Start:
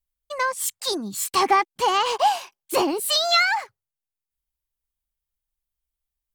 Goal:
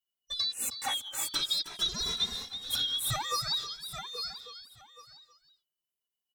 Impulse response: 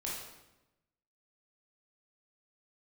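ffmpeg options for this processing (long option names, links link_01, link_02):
-filter_complex "[0:a]afftfilt=real='real(if(lt(b,272),68*(eq(floor(b/68),0)*2+eq(floor(b/68),1)*3+eq(floor(b/68),2)*0+eq(floor(b/68),3)*1)+mod(b,68),b),0)':imag='imag(if(lt(b,272),68*(eq(floor(b/68),0)*2+eq(floor(b/68),1)*3+eq(floor(b/68),2)*0+eq(floor(b/68),3)*1)+mod(b,68),b),0)':win_size=2048:overlap=0.75,asplit=2[link_01][link_02];[link_02]aecho=0:1:825|1650:0.168|0.0319[link_03];[link_01][link_03]amix=inputs=2:normalize=0,acompressor=threshold=-25dB:ratio=4,equalizer=frequency=1700:width=1.5:gain=-3,asplit=2[link_04][link_05];[link_05]aecho=0:1:317:0.299[link_06];[link_04][link_06]amix=inputs=2:normalize=0,asplit=2[link_07][link_08];[link_08]adelay=2.5,afreqshift=0.5[link_09];[link_07][link_09]amix=inputs=2:normalize=1,volume=-1dB"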